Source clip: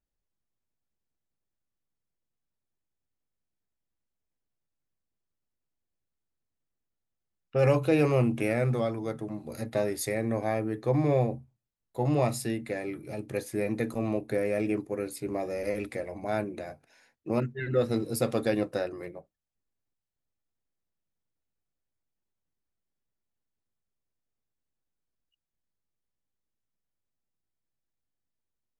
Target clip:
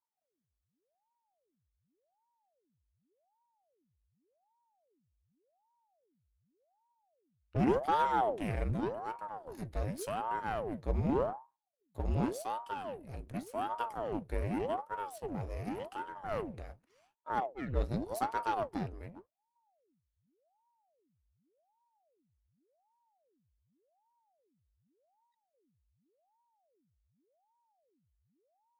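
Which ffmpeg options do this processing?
-af "aeval=exprs='if(lt(val(0),0),0.447*val(0),val(0))':c=same,asubboost=boost=5:cutoff=52,aeval=exprs='val(0)*sin(2*PI*500*n/s+500*0.9/0.87*sin(2*PI*0.87*n/s))':c=same,volume=0.501"

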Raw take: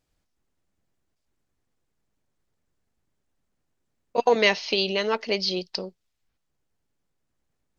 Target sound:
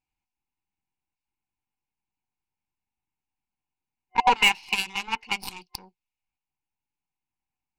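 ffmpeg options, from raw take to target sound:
-af "aeval=exprs='0.531*(cos(1*acos(clip(val(0)/0.531,-1,1)))-cos(1*PI/2))+0.237*(cos(2*acos(clip(val(0)/0.531,-1,1)))-cos(2*PI/2))+0.00596*(cos(5*acos(clip(val(0)/0.531,-1,1)))-cos(5*PI/2))+0.0944*(cos(7*acos(clip(val(0)/0.531,-1,1)))-cos(7*PI/2))':c=same,superequalizer=7b=0.501:8b=0.316:9b=3.55:12b=3.55,asoftclip=type=tanh:threshold=0.316"

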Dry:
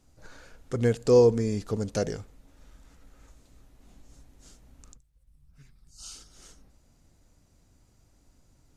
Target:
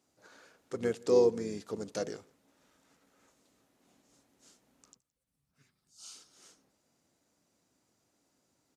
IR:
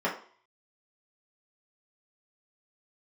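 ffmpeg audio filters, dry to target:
-filter_complex "[0:a]highpass=250,asplit=2[s0][s1];[s1]adelay=169.1,volume=0.0447,highshelf=f=4000:g=-3.8[s2];[s0][s2]amix=inputs=2:normalize=0,asplit=2[s3][s4];[s4]asetrate=35002,aresample=44100,atempo=1.25992,volume=0.316[s5];[s3][s5]amix=inputs=2:normalize=0,volume=0.501"

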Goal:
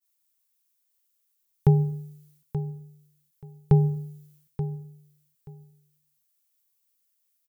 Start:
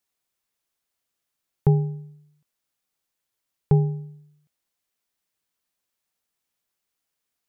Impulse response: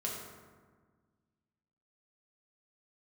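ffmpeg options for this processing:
-filter_complex "[0:a]aemphasis=mode=production:type=75kf,agate=range=0.0224:threshold=0.00126:ratio=3:detection=peak,equalizer=f=560:w=0.83:g=-3,aecho=1:1:880|1760:0.266|0.0452,asplit=2[s0][s1];[1:a]atrim=start_sample=2205,afade=t=out:st=0.31:d=0.01,atrim=end_sample=14112[s2];[s1][s2]afir=irnorm=-1:irlink=0,volume=0.0944[s3];[s0][s3]amix=inputs=2:normalize=0"

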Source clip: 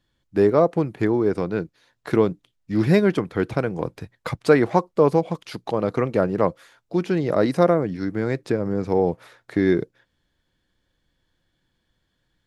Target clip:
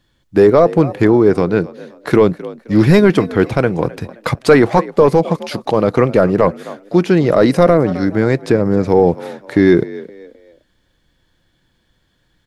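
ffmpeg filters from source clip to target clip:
-filter_complex "[0:a]asplit=4[s0][s1][s2][s3];[s1]adelay=261,afreqshift=52,volume=0.106[s4];[s2]adelay=522,afreqshift=104,volume=0.0359[s5];[s3]adelay=783,afreqshift=156,volume=0.0123[s6];[s0][s4][s5][s6]amix=inputs=4:normalize=0,apsyclip=3.98,volume=0.794"

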